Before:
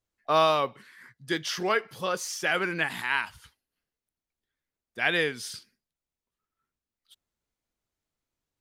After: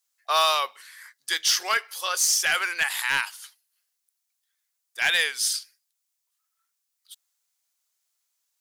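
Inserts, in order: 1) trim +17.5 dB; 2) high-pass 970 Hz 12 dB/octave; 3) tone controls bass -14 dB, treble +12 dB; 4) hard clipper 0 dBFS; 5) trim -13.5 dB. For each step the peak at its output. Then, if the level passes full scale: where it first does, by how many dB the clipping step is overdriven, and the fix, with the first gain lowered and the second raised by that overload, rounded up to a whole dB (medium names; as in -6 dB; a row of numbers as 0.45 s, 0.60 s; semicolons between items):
+8.5 dBFS, +7.5 dBFS, +8.5 dBFS, 0.0 dBFS, -13.5 dBFS; step 1, 8.5 dB; step 1 +8.5 dB, step 5 -4.5 dB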